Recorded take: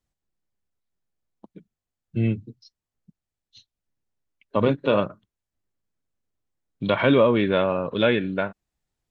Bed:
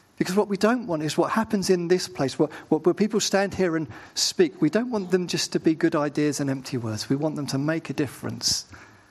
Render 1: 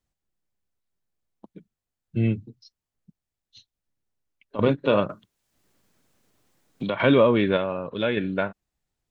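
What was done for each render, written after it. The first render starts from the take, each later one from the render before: 2.47–4.59 s: compression 2:1, threshold -40 dBFS; 5.09–7.00 s: three bands compressed up and down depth 70%; 7.57–8.17 s: gain -5 dB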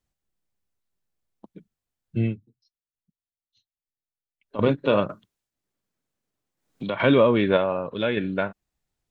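2.21–4.56 s: dip -17.5 dB, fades 0.19 s; 5.11–6.96 s: dip -16.5 dB, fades 0.40 s; 7.46–7.95 s: dynamic bell 770 Hz, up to +5 dB, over -33 dBFS, Q 0.93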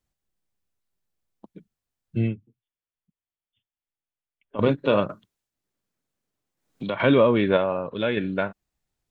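2.28–4.58 s: brick-wall FIR low-pass 3.6 kHz; 6.94–8.07 s: distance through air 56 m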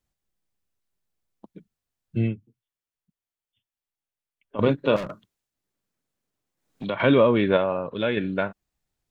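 4.96–6.85 s: overload inside the chain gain 28.5 dB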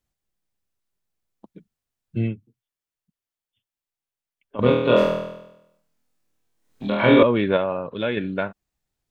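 4.60–7.23 s: flutter echo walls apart 4.2 m, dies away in 0.87 s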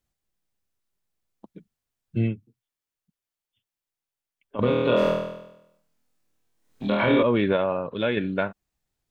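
peak limiter -11.5 dBFS, peak gain reduction 9.5 dB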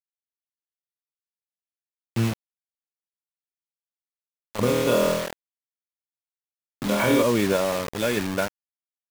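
bit crusher 5-bit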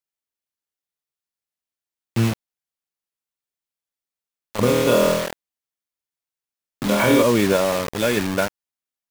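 trim +4 dB

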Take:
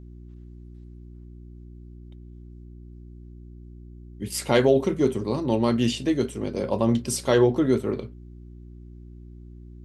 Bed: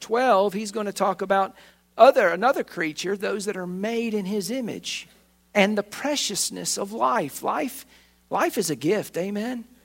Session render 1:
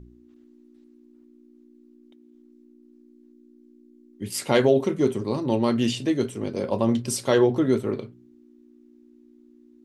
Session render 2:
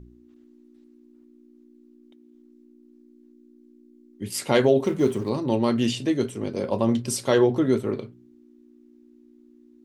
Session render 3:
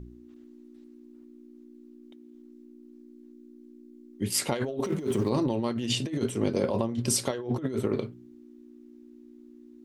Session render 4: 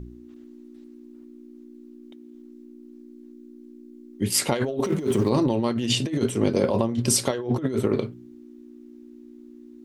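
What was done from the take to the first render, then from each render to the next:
de-hum 60 Hz, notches 3
4.84–5.30 s: companding laws mixed up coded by mu
peak limiter -14.5 dBFS, peak gain reduction 7.5 dB; compressor with a negative ratio -27 dBFS, ratio -0.5
trim +5 dB

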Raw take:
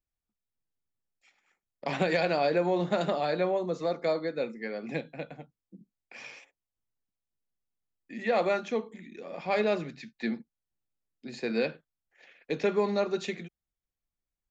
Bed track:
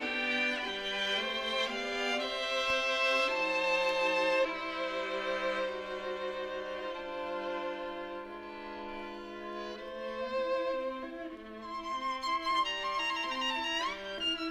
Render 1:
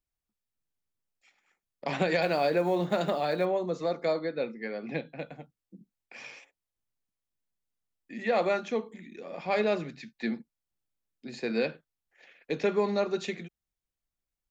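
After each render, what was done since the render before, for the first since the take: 2.22–3.46 s: block-companded coder 7-bit; 4.19–5.19 s: low-pass 4.9 kHz 24 dB/octave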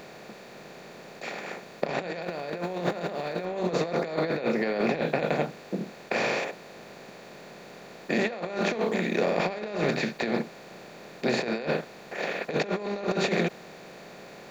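spectral levelling over time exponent 0.4; compressor with a negative ratio -27 dBFS, ratio -0.5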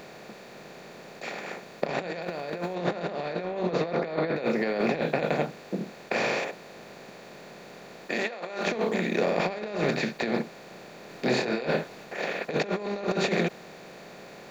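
2.74–4.35 s: low-pass 6.6 kHz -> 3.5 kHz; 8.08–8.67 s: high-pass 530 Hz 6 dB/octave; 11.07–12.05 s: doubling 24 ms -4 dB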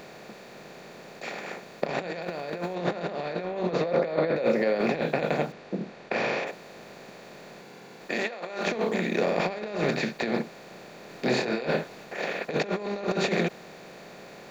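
3.82–4.75 s: peaking EQ 550 Hz +9.5 dB 0.24 oct; 5.52–6.47 s: distance through air 100 m; 7.61–8.01 s: comb of notches 620 Hz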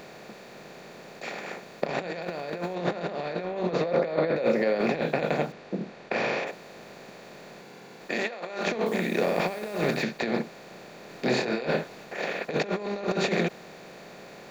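8.86–10.03 s: word length cut 8-bit, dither none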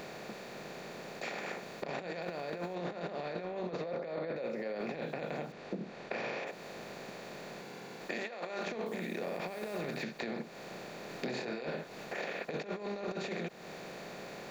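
peak limiter -18 dBFS, peak gain reduction 8 dB; compression 5:1, threshold -36 dBFS, peak gain reduction 12 dB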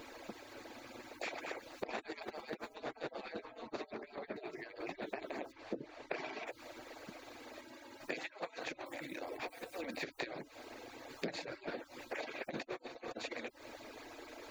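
harmonic-percussive separation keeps percussive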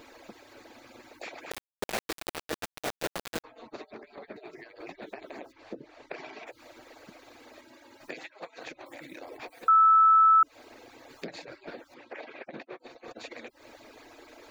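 1.51–3.44 s: companded quantiser 2-bit; 9.68–10.43 s: bleep 1.31 kHz -15.5 dBFS; 11.94–12.80 s: band-pass 140–3200 Hz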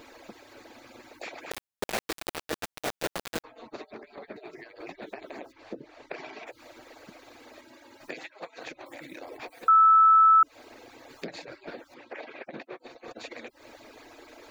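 trim +1.5 dB

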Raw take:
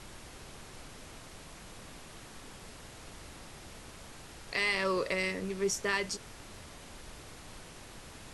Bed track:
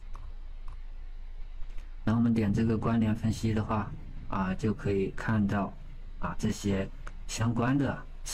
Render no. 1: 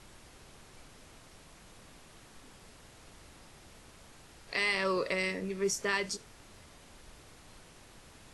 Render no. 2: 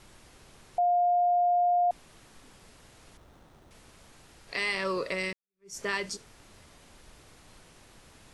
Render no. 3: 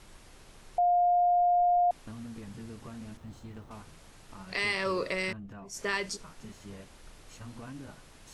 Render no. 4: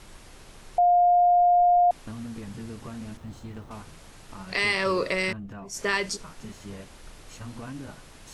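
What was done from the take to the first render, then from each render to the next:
noise print and reduce 6 dB
0.78–1.91 s: bleep 707 Hz -21 dBFS; 3.17–3.71 s: sliding maximum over 17 samples; 5.33–5.77 s: fade in exponential
add bed track -17 dB
trim +5.5 dB

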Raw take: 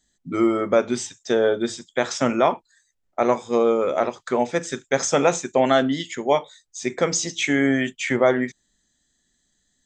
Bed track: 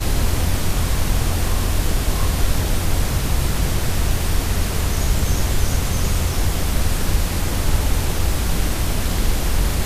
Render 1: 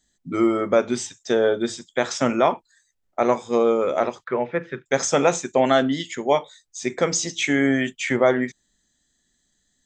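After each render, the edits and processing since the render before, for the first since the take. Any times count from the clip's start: 4.24–4.86 s: cabinet simulation 120–2500 Hz, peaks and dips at 130 Hz +4 dB, 260 Hz -8 dB, 740 Hz -8 dB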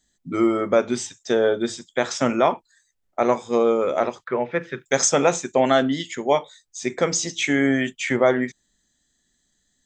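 4.50–5.08 s: treble shelf 3.4 kHz -> 5.6 kHz +11 dB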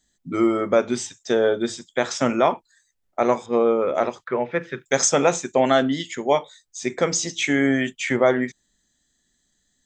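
3.46–3.95 s: low-pass 2.7 kHz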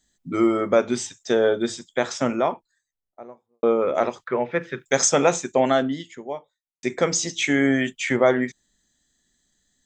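1.73–3.63 s: studio fade out; 5.35–6.83 s: studio fade out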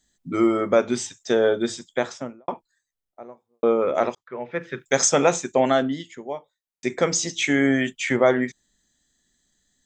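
1.90–2.48 s: studio fade out; 4.15–4.80 s: fade in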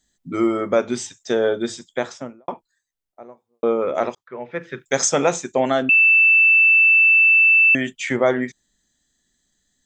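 5.89–7.75 s: bleep 2.65 kHz -10 dBFS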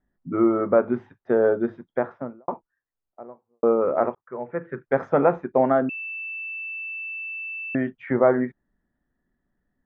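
low-pass 1.5 kHz 24 dB/octave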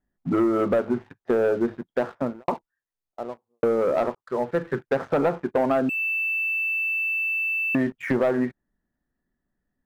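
compression 4:1, threshold -25 dBFS, peak gain reduction 11 dB; waveshaping leveller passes 2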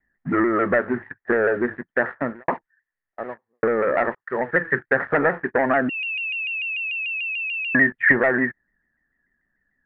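resonant low-pass 1.8 kHz, resonance Q 11; vibrato with a chosen wave saw down 6.8 Hz, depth 100 cents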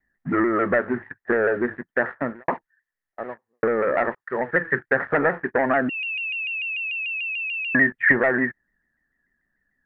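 trim -1 dB

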